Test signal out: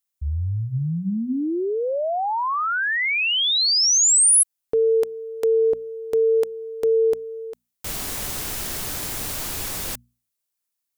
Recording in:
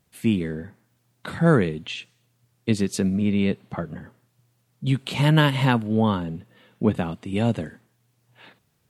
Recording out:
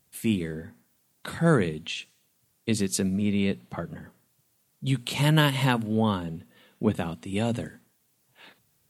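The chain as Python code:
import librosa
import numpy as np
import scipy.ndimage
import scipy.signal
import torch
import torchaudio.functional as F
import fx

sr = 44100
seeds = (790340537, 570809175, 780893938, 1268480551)

y = fx.high_shelf(x, sr, hz=5400.0, db=11.5)
y = fx.hum_notches(y, sr, base_hz=60, count=4)
y = F.gain(torch.from_numpy(y), -3.5).numpy()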